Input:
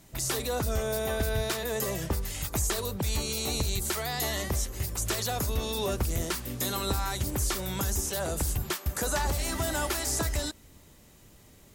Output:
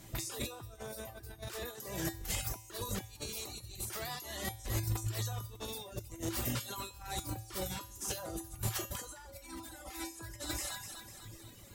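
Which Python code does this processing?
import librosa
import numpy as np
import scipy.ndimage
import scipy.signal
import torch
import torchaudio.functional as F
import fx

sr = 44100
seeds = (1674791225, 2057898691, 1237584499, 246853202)

p1 = fx.comb(x, sr, ms=3.9, depth=0.87, at=(9.3, 10.21))
p2 = p1 + fx.echo_split(p1, sr, split_hz=670.0, low_ms=87, high_ms=249, feedback_pct=52, wet_db=-10.5, dry=0)
p3 = fx.over_compress(p2, sr, threshold_db=-35.0, ratio=-0.5)
p4 = fx.comb_fb(p3, sr, f0_hz=110.0, decay_s=1.1, harmonics='odd', damping=0.0, mix_pct=90)
p5 = fx.dereverb_blind(p4, sr, rt60_s=0.98)
y = p5 * 10.0 ** (13.5 / 20.0)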